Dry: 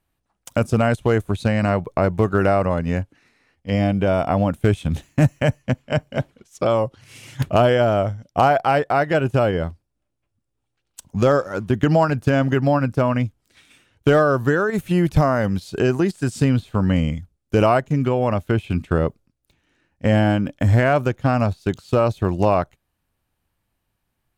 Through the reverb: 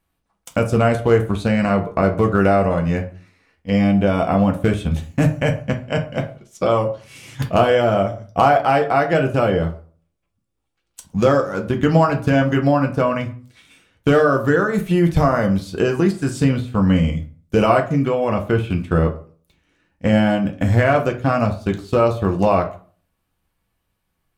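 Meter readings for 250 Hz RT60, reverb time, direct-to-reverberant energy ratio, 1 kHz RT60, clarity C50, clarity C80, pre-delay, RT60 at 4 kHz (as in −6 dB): 0.45 s, 0.40 s, 2.0 dB, 0.40 s, 12.5 dB, 17.5 dB, 3 ms, 0.25 s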